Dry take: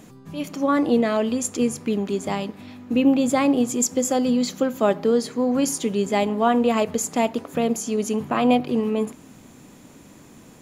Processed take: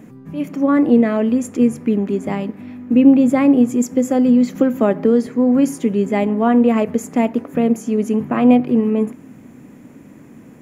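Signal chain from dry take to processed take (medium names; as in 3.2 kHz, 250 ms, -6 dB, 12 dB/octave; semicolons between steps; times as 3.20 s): graphic EQ 125/250/500/2000/4000/8000 Hz +6/+9/+4/+7/-9/-4 dB; 4.55–5.27 s: three bands compressed up and down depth 70%; trim -2.5 dB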